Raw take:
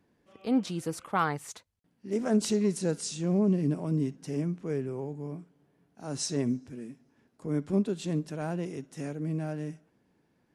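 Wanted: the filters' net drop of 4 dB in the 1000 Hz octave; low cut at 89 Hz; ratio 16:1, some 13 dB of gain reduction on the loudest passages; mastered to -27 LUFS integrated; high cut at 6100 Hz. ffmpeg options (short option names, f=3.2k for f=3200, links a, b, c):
-af "highpass=89,lowpass=6.1k,equalizer=f=1k:t=o:g=-5.5,acompressor=threshold=-34dB:ratio=16,volume=13dB"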